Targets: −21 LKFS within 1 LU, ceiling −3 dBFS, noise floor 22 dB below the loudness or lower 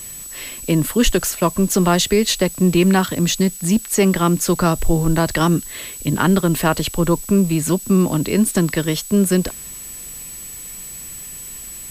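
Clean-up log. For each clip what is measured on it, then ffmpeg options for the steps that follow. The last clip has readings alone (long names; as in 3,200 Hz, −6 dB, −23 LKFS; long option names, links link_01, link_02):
interfering tone 7,900 Hz; level of the tone −33 dBFS; background noise floor −34 dBFS; target noise floor −40 dBFS; integrated loudness −17.5 LKFS; sample peak −3.0 dBFS; target loudness −21.0 LKFS
→ -af "bandreject=frequency=7900:width=30"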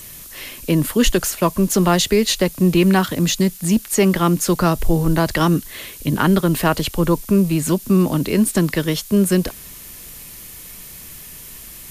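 interfering tone none found; background noise floor −38 dBFS; target noise floor −40 dBFS
→ -af "afftdn=noise_reduction=6:noise_floor=-38"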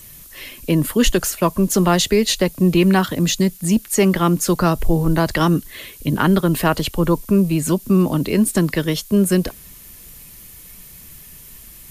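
background noise floor −41 dBFS; integrated loudness −17.5 LKFS; sample peak −3.0 dBFS; target loudness −21.0 LKFS
→ -af "volume=-3.5dB"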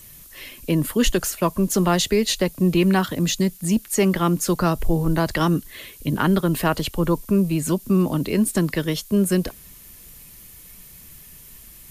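integrated loudness −21.0 LKFS; sample peak −6.5 dBFS; background noise floor −45 dBFS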